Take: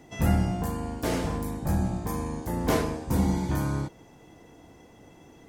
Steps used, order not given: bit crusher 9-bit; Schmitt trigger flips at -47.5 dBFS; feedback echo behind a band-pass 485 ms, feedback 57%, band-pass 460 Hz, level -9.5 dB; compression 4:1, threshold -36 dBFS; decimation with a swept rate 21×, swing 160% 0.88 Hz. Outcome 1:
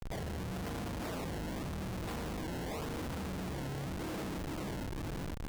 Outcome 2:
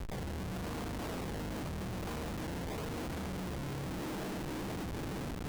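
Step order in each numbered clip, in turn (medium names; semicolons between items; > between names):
feedback echo behind a band-pass > compression > bit crusher > Schmitt trigger > decimation with a swept rate; decimation with a swept rate > feedback echo behind a band-pass > compression > Schmitt trigger > bit crusher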